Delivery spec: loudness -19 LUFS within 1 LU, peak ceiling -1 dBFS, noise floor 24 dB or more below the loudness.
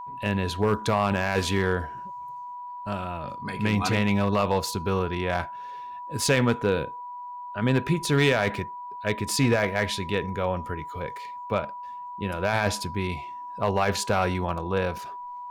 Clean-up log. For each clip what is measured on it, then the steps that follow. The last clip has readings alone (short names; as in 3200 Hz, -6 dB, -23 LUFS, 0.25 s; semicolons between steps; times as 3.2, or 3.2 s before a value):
clipped 0.2%; flat tops at -13.5 dBFS; steady tone 980 Hz; tone level -35 dBFS; loudness -26.5 LUFS; peak -13.5 dBFS; loudness target -19.0 LUFS
-> clip repair -13.5 dBFS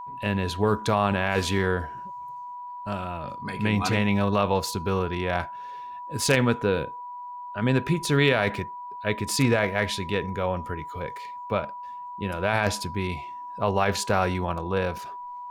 clipped 0.0%; steady tone 980 Hz; tone level -35 dBFS
-> notch 980 Hz, Q 30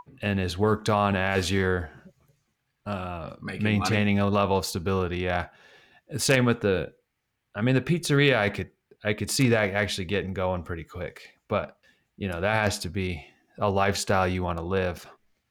steady tone none; loudness -26.0 LUFS; peak -4.5 dBFS; loudness target -19.0 LUFS
-> gain +7 dB; limiter -1 dBFS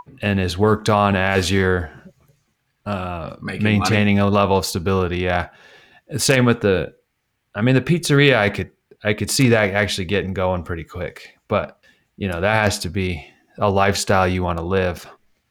loudness -19.0 LUFS; peak -1.0 dBFS; noise floor -71 dBFS